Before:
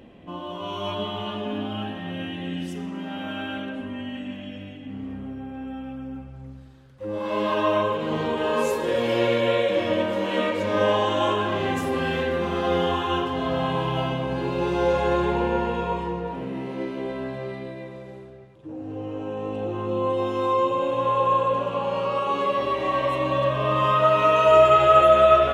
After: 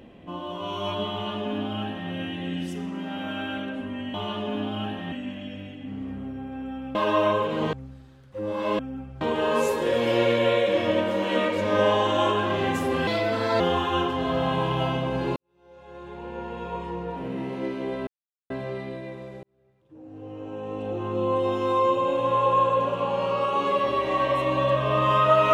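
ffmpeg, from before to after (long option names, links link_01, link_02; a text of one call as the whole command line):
ffmpeg -i in.wav -filter_complex "[0:a]asplit=12[link_01][link_02][link_03][link_04][link_05][link_06][link_07][link_08][link_09][link_10][link_11][link_12];[link_01]atrim=end=4.142[link_13];[link_02]atrim=start=1.118:end=2.102[link_14];[link_03]atrim=start=4.138:end=5.972[link_15];[link_04]atrim=start=7.448:end=8.232[link_16];[link_05]atrim=start=6.388:end=7.452[link_17];[link_06]atrim=start=5.968:end=6.392[link_18];[link_07]atrim=start=8.228:end=12.094[link_19];[link_08]atrim=start=12.09:end=12.77,asetpts=PTS-STARTPTS,asetrate=56448,aresample=44100,atrim=end_sample=23428,asetpts=PTS-STARTPTS[link_20];[link_09]atrim=start=12.766:end=14.53,asetpts=PTS-STARTPTS,afade=type=out:start_time=1.76:duration=0.004:curve=hsin[link_21];[link_10]atrim=start=14.53:end=17.24,asetpts=PTS-STARTPTS,afade=type=in:duration=1.97:curve=qua,afade=type=out:start_time=2.706:duration=0.004:curve=hsin,apad=pad_dur=0.43[link_22];[link_11]atrim=start=17.24:end=18.17,asetpts=PTS-STARTPTS,afade=type=in:duration=0.004:curve=hsin,afade=type=out:start_time=0.926:duration=0.004:curve=hsin[link_23];[link_12]atrim=start=18.17,asetpts=PTS-STARTPTS,afade=type=in:duration=1.8[link_24];[link_13][link_14]acrossfade=duration=0.004:curve1=hsin:curve2=hsin[link_25];[link_25][link_15]acrossfade=duration=0.004:curve1=hsin:curve2=hsin[link_26];[link_26][link_16]acrossfade=duration=0.004:curve1=hsin:curve2=hsin[link_27];[link_27][link_17]acrossfade=duration=0.004:curve1=hsin:curve2=hsin[link_28];[link_28][link_18]acrossfade=duration=0.004:curve1=hsin:curve2=hsin[link_29];[link_29][link_19]acrossfade=duration=0.004:curve1=hsin:curve2=hsin[link_30];[link_30][link_20]acrossfade=duration=0.004:curve1=hsin:curve2=hsin[link_31];[link_21][link_22][link_23][link_24]concat=n=4:v=0:a=1[link_32];[link_31][link_32]acrossfade=duration=0.004:curve1=hsin:curve2=hsin" out.wav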